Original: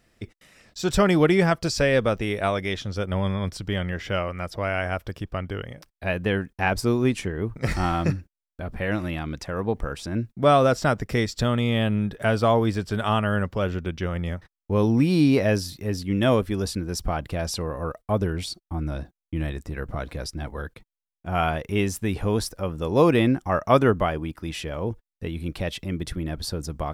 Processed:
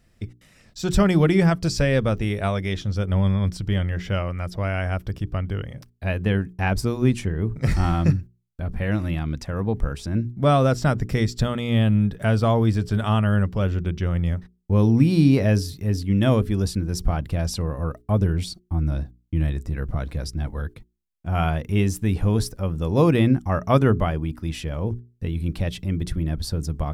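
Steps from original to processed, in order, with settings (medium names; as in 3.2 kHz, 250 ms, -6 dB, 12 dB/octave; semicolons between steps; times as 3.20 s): tone controls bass +10 dB, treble +2 dB; hum notches 60/120/180/240/300/360/420 Hz; trim -2.5 dB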